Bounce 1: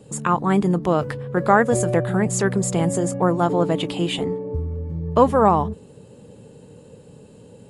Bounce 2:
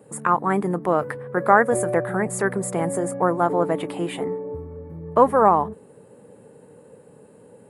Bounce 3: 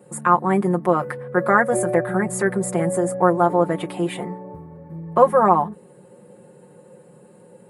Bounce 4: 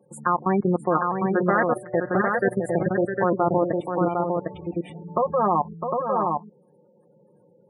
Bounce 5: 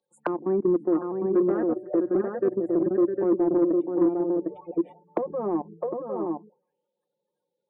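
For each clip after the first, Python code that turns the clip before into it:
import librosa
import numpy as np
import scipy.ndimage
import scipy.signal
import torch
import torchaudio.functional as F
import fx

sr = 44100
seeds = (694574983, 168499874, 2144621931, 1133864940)

y1 = fx.highpass(x, sr, hz=450.0, slope=6)
y1 = fx.band_shelf(y1, sr, hz=4400.0, db=-14.0, octaves=1.7)
y1 = y1 * librosa.db_to_amplitude(2.0)
y2 = y1 + 0.86 * np.pad(y1, (int(5.6 * sr / 1000.0), 0))[:len(y1)]
y2 = y2 * librosa.db_to_amplitude(-1.0)
y3 = fx.level_steps(y2, sr, step_db=20)
y3 = fx.echo_multitap(y3, sr, ms=(657, 755), db=(-7.0, -3.5))
y3 = fx.spec_gate(y3, sr, threshold_db=-20, keep='strong')
y4 = fx.auto_wah(y3, sr, base_hz=330.0, top_hz=4000.0, q=5.3, full_db=-23.5, direction='down')
y4 = 10.0 ** (-21.0 / 20.0) * np.tanh(y4 / 10.0 ** (-21.0 / 20.0))
y4 = y4 * librosa.db_to_amplitude(8.0)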